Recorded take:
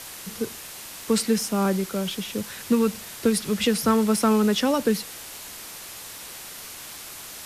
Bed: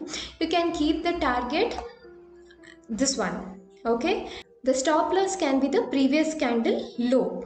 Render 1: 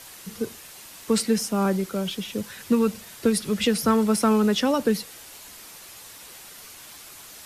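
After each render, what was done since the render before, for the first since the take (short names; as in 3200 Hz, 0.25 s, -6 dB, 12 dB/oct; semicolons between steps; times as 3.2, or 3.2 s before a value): denoiser 6 dB, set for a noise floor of -40 dBFS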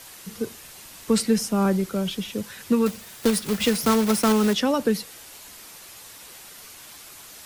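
0.6–2.3 low shelf 140 Hz +7 dB; 2.86–4.55 block floating point 3-bit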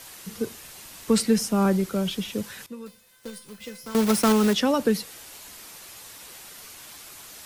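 2.66–3.95 resonator 510 Hz, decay 0.46 s, mix 90%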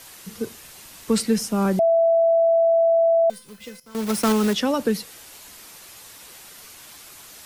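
1.79–3.3 bleep 664 Hz -14 dBFS; 3.8–4.25 fade in, from -15 dB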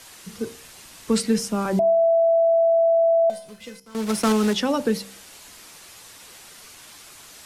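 LPF 11000 Hz 12 dB/oct; de-hum 65.67 Hz, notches 15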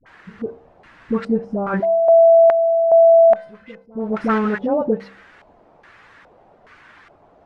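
dispersion highs, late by 64 ms, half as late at 600 Hz; LFO low-pass square 1.2 Hz 690–1700 Hz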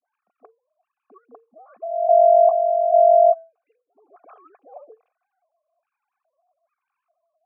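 sine-wave speech; vowel filter a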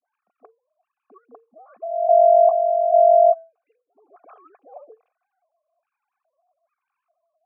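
nothing audible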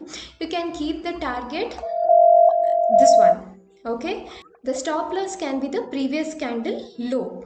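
add bed -2 dB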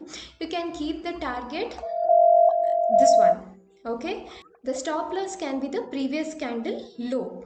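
gain -3.5 dB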